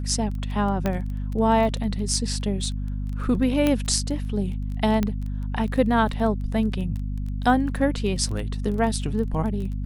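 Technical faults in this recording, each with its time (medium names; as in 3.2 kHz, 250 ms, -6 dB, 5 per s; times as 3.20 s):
crackle 14 per s -31 dBFS
hum 50 Hz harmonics 5 -28 dBFS
0.86 s: pop -11 dBFS
3.67 s: pop -9 dBFS
5.03 s: pop -11 dBFS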